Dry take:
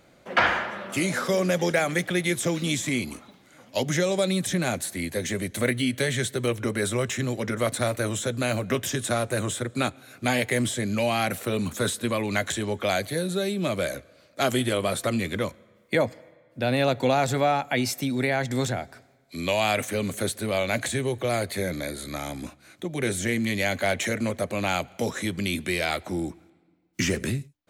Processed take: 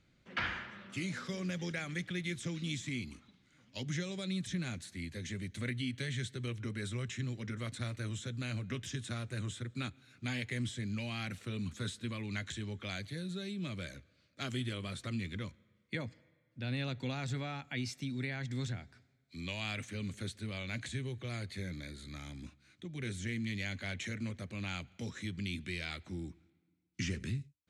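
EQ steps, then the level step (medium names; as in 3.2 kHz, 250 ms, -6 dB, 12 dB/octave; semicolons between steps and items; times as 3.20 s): distance through air 100 m; amplifier tone stack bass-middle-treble 6-0-2; +7.0 dB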